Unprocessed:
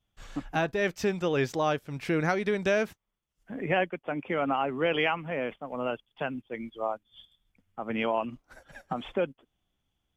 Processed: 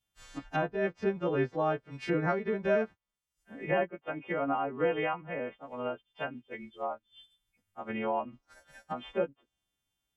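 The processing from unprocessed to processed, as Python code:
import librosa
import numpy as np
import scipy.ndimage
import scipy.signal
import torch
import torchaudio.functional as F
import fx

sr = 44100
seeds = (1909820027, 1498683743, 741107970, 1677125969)

y = fx.freq_snap(x, sr, grid_st=2)
y = fx.env_lowpass_down(y, sr, base_hz=1300.0, full_db=-26.0)
y = fx.upward_expand(y, sr, threshold_db=-39.0, expansion=1.5)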